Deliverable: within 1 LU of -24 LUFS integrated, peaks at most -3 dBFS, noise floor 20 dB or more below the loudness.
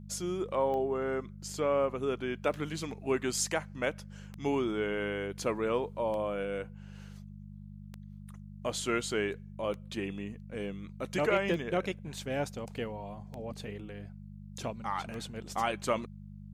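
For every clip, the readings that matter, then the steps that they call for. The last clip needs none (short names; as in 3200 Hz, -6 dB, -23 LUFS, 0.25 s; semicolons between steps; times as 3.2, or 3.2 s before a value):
clicks 9; hum 50 Hz; harmonics up to 200 Hz; hum level -44 dBFS; loudness -34.0 LUFS; peak -16.0 dBFS; loudness target -24.0 LUFS
-> de-click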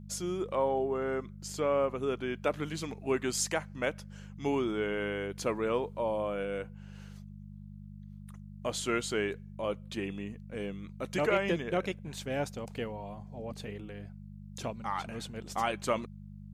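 clicks 0; hum 50 Hz; harmonics up to 200 Hz; hum level -44 dBFS
-> de-hum 50 Hz, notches 4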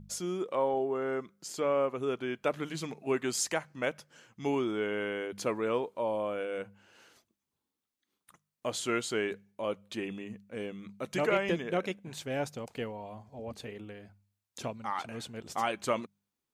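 hum none; loudness -34.0 LUFS; peak -16.0 dBFS; loudness target -24.0 LUFS
-> gain +10 dB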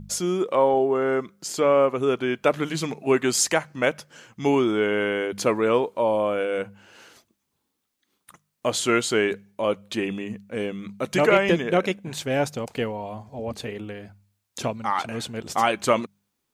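loudness -24.0 LUFS; peak -6.0 dBFS; noise floor -78 dBFS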